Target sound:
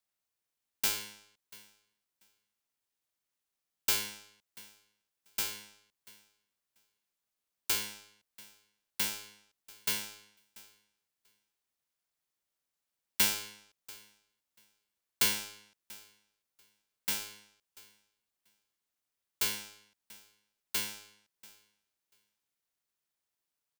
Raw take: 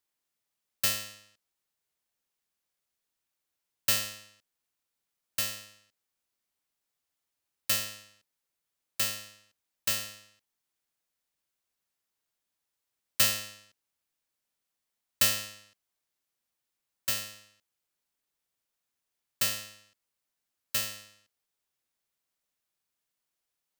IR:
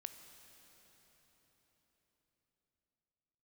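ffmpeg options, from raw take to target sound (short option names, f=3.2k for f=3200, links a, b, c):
-af "aecho=1:1:688|1376:0.0794|0.0119,aeval=exprs='val(0)*sin(2*PI*310*n/s)':c=same"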